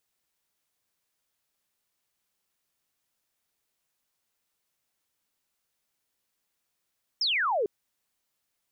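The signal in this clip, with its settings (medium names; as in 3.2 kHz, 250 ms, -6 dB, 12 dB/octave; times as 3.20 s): laser zap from 5.5 kHz, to 380 Hz, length 0.45 s sine, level -23.5 dB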